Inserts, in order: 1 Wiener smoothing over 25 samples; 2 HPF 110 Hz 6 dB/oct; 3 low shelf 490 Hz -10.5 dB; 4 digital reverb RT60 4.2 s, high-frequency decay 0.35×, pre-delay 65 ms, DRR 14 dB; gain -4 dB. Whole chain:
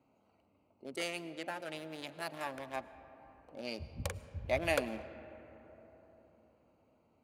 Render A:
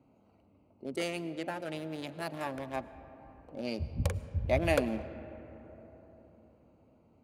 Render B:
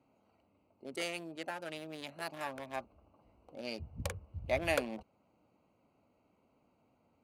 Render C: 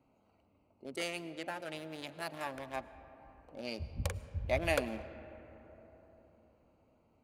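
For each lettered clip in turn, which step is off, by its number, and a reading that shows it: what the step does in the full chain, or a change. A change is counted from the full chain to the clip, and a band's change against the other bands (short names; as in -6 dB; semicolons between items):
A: 3, 125 Hz band +8.5 dB; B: 4, momentary loudness spread change -10 LU; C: 2, 125 Hz band +4.0 dB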